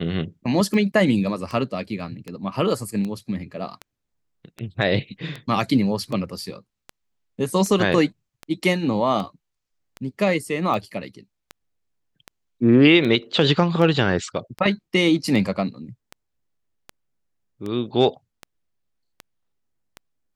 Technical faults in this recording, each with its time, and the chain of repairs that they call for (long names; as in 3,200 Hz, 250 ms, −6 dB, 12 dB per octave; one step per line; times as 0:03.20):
scratch tick 78 rpm −18 dBFS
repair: click removal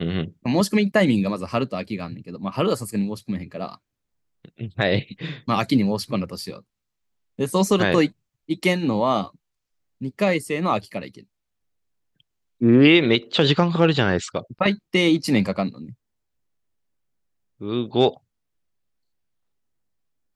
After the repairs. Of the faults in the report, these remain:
none of them is left